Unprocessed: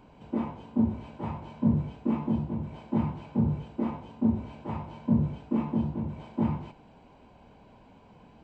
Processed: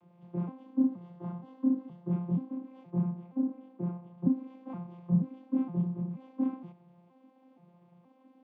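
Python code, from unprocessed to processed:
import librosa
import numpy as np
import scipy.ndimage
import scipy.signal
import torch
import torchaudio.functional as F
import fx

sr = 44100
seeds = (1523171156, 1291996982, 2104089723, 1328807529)

y = fx.vocoder_arp(x, sr, chord='bare fifth', root=53, every_ms=473)
y = fx.notch(y, sr, hz=2400.0, q=5.9, at=(0.8, 2.12))
y = fx.high_shelf(y, sr, hz=2200.0, db=-9.0, at=(2.9, 4.18))
y = y * librosa.db_to_amplitude(-2.5)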